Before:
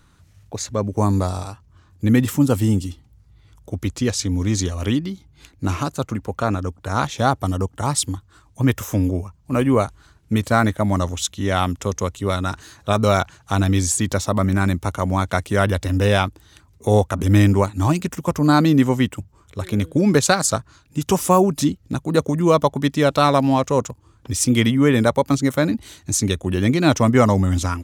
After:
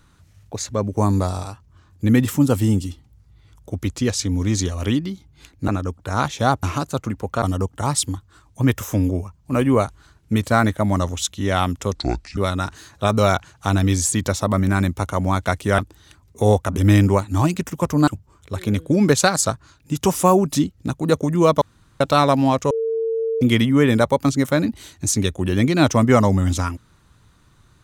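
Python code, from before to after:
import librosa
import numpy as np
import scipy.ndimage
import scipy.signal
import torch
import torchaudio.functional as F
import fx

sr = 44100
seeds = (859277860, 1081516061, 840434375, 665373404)

y = fx.edit(x, sr, fx.move(start_s=5.68, length_s=0.79, to_s=7.42),
    fx.speed_span(start_s=11.95, length_s=0.28, speed=0.66),
    fx.cut(start_s=15.64, length_s=0.6),
    fx.cut(start_s=18.53, length_s=0.6),
    fx.room_tone_fill(start_s=22.67, length_s=0.39),
    fx.bleep(start_s=23.76, length_s=0.71, hz=451.0, db=-19.0), tone=tone)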